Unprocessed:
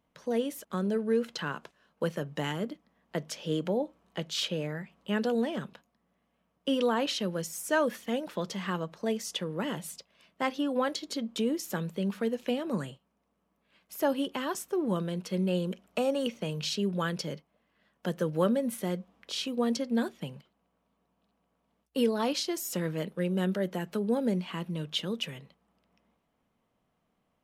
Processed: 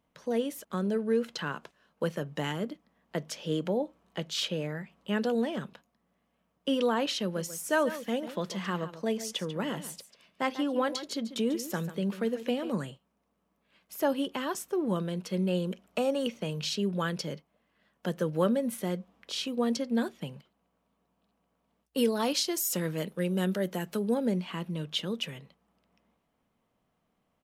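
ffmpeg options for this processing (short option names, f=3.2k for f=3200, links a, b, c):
-filter_complex "[0:a]asplit=3[a][b][c];[a]afade=t=out:st=7.35:d=0.02[d];[b]aecho=1:1:143:0.224,afade=t=in:st=7.35:d=0.02,afade=t=out:st=12.71:d=0.02[e];[c]afade=t=in:st=12.71:d=0.02[f];[d][e][f]amix=inputs=3:normalize=0,asettb=1/sr,asplit=3[g][h][i];[g]atrim=end=21.974[j];[h]atrim=start=21.97:end=24.14,asetpts=PTS-STARTPTS,afade=t=in:d=0.004:c=qsin,afade=t=out:st=2.166:d=0.004:c=qsin,highshelf=f=5.1k:g=8[k];[i]atrim=start=24.136[l];[j][k]acrossfade=d=0.004:c1=hsin:c2=qsin[m];[m][l]acrossfade=d=0.004:c1=qsin:c2=hsin"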